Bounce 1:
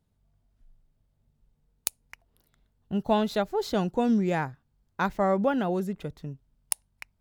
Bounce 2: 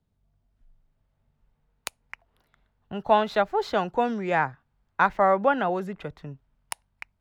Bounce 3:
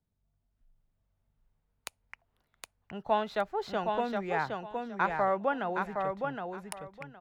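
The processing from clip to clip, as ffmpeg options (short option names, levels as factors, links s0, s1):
-filter_complex "[0:a]highshelf=f=7800:g=-12,acrossover=split=310|650|2800[s0][s1][s2][s3];[s0]alimiter=level_in=2.24:limit=0.0631:level=0:latency=1,volume=0.447[s4];[s2]dynaudnorm=f=360:g=5:m=3.16[s5];[s4][s1][s5][s3]amix=inputs=4:normalize=0,volume=0.891"
-af "aecho=1:1:766|1532|2298:0.596|0.119|0.0238,volume=0.398"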